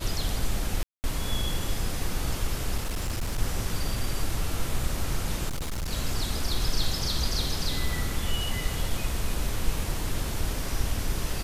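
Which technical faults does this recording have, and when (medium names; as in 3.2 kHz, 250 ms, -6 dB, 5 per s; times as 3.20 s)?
0.83–1.04 s: dropout 209 ms
2.77–3.38 s: clipped -25 dBFS
5.48–5.92 s: clipped -27.5 dBFS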